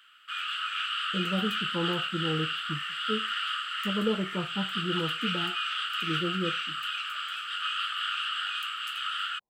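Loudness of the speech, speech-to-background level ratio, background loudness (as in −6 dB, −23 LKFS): −34.0 LKFS, −3.0 dB, −31.0 LKFS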